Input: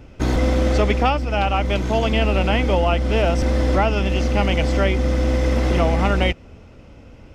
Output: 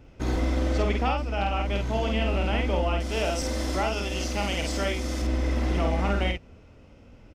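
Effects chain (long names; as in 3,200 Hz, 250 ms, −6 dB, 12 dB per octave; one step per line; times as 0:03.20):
0:03.00–0:05.22: bass and treble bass −5 dB, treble +13 dB
double-tracking delay 50 ms −3.5 dB
level −9 dB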